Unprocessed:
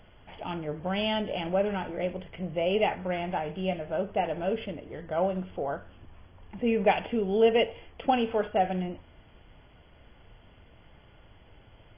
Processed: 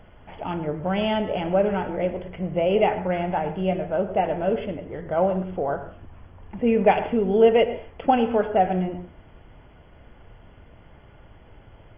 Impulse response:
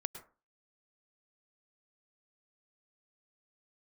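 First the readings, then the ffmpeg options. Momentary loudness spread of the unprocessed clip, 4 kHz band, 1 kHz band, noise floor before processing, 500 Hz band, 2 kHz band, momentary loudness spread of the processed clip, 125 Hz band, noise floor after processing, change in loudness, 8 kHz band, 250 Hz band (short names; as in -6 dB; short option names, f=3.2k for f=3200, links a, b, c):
12 LU, -0.5 dB, +6.0 dB, -56 dBFS, +6.0 dB, +2.5 dB, 12 LU, +6.5 dB, -51 dBFS, +6.0 dB, n/a, +6.0 dB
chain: -filter_complex "[0:a]asplit=2[a][b];[1:a]atrim=start_sample=2205,lowpass=2.4k[c];[b][c]afir=irnorm=-1:irlink=0,volume=3dB[d];[a][d]amix=inputs=2:normalize=0,volume=-1dB"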